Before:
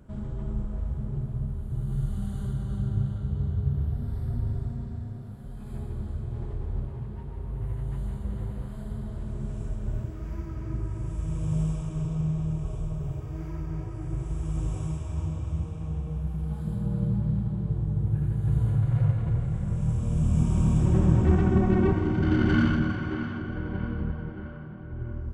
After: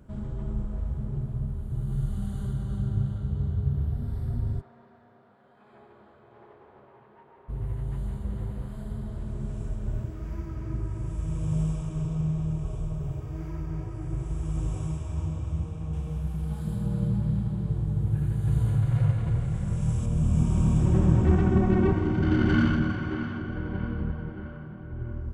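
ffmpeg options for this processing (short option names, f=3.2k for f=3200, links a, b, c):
-filter_complex "[0:a]asplit=3[a][b][c];[a]afade=t=out:st=4.6:d=0.02[d];[b]highpass=610,lowpass=2.3k,afade=t=in:st=4.6:d=0.02,afade=t=out:st=7.48:d=0.02[e];[c]afade=t=in:st=7.48:d=0.02[f];[d][e][f]amix=inputs=3:normalize=0,asettb=1/sr,asplit=3[g][h][i];[g]atrim=end=15.934[j];[h]atrim=start=15.93:end=20.06,asetpts=PTS-STARTPTS,afade=t=in:d=0.004:c=qsin,afade=t=out:st=4.126:d=0.004:c=qsin,highshelf=f=2.1k:g=7.5[k];[i]atrim=start=20.056[l];[j][k]acrossfade=d=0.004:c1=hsin:c2=qsin[m];[m][l]acrossfade=d=0.004:c1=qsin:c2=hsin"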